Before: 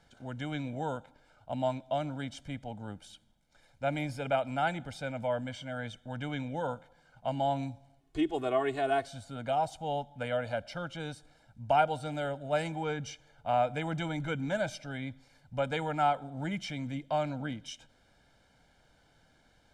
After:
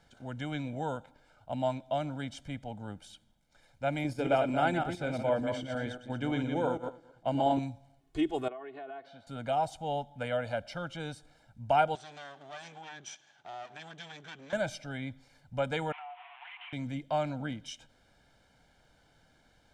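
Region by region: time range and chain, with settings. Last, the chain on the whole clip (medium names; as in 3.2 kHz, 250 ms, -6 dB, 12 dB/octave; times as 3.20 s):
4.04–7.59 s: backward echo that repeats 114 ms, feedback 42%, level -5 dB + gate -41 dBFS, range -7 dB + peaking EQ 360 Hz +11 dB 0.68 oct
8.48–9.27 s: compression, threshold -39 dBFS + high-pass 290 Hz + distance through air 340 m
11.95–14.53 s: comb filter that takes the minimum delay 1.2 ms + compression 2.5:1, threshold -45 dBFS + cabinet simulation 280–7900 Hz, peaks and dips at 520 Hz -5 dB, 980 Hz -4 dB, 1.6 kHz +3 dB, 3.3 kHz +7 dB, 6 kHz +7 dB
15.92–16.73 s: one-bit delta coder 16 kbps, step -34 dBFS + rippled Chebyshev high-pass 700 Hz, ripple 9 dB + compression, threshold -43 dBFS
whole clip: none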